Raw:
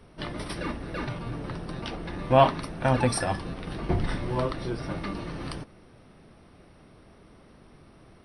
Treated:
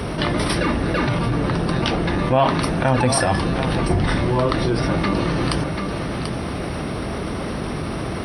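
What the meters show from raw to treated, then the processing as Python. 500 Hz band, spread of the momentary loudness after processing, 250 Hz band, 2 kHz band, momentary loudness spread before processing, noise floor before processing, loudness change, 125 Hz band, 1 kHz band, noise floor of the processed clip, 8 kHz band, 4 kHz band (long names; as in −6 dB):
+7.0 dB, 9 LU, +11.5 dB, +11.0 dB, 13 LU, −54 dBFS, +7.5 dB, +10.0 dB, +6.5 dB, −27 dBFS, +10.0 dB, +11.5 dB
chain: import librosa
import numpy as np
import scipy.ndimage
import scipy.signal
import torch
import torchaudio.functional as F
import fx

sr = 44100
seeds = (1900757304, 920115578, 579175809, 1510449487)

y = scipy.signal.sosfilt(scipy.signal.butter(2, 42.0, 'highpass', fs=sr, output='sos'), x)
y = y + 10.0 ** (-17.5 / 20.0) * np.pad(y, (int(738 * sr / 1000.0), 0))[:len(y)]
y = fx.env_flatten(y, sr, amount_pct=70)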